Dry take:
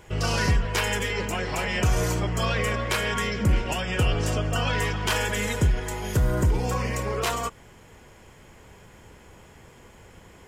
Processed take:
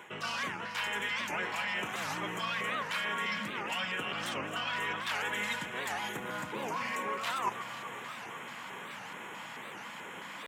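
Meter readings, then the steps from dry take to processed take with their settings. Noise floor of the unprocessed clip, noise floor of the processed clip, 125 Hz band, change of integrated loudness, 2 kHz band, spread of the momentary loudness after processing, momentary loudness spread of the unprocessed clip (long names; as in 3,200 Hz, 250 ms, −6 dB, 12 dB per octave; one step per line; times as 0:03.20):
−51 dBFS, −45 dBFS, −24.5 dB, −9.5 dB, −4.0 dB, 10 LU, 4 LU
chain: in parallel at −8.5 dB: wave folding −21.5 dBFS
on the sum: flat-topped bell 1,900 Hz +8.5 dB 2.5 octaves
reversed playback
downward compressor 16 to 1, threshold −31 dBFS, peak gain reduction 19 dB
reversed playback
delay that swaps between a low-pass and a high-pass 125 ms, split 1,600 Hz, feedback 88%, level −11 dB
auto-filter notch square 2.3 Hz 400–4,700 Hz
high-pass filter 180 Hz 24 dB per octave
wow of a warped record 78 rpm, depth 250 cents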